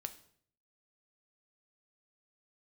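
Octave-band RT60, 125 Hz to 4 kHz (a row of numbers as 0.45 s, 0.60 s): 0.85 s, 0.65 s, 0.65 s, 0.55 s, 0.55 s, 0.50 s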